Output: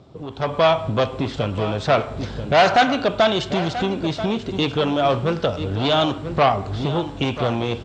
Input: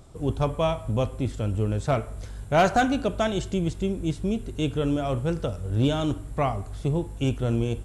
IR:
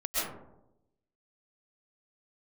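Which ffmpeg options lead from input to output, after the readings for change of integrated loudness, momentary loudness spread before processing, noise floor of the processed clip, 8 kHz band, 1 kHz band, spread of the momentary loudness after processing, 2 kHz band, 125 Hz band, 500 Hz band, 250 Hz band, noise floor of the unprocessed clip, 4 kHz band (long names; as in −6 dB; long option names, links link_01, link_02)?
+5.5 dB, 6 LU, −34 dBFS, +0.5 dB, +8.5 dB, 7 LU, +8.5 dB, +0.5 dB, +7.0 dB, +2.5 dB, −39 dBFS, +12.0 dB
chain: -filter_complex "[0:a]aeval=exprs='0.282*(cos(1*acos(clip(val(0)/0.282,-1,1)))-cos(1*PI/2))+0.0631*(cos(5*acos(clip(val(0)/0.282,-1,1)))-cos(5*PI/2))':channel_layout=same,highpass=130,aecho=1:1:986:0.211,acrossover=split=680[link_01][link_02];[link_01]acompressor=threshold=-35dB:ratio=6[link_03];[link_02]lowpass=frequency=4500:width=0.5412,lowpass=frequency=4500:width=1.3066[link_04];[link_03][link_04]amix=inputs=2:normalize=0,equalizer=frequency=1800:width_type=o:width=2:gain=-6,dynaudnorm=framelen=300:gausssize=3:maxgain=12.5dB"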